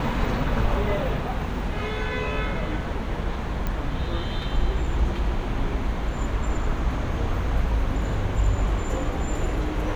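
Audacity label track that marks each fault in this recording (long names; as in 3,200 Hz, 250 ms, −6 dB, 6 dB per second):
3.670000	3.670000	click −15 dBFS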